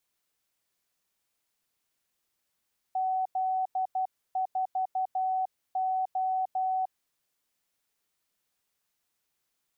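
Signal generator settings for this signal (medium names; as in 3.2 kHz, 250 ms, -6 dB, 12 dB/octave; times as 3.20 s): Morse "Z4O" 12 wpm 752 Hz -25.5 dBFS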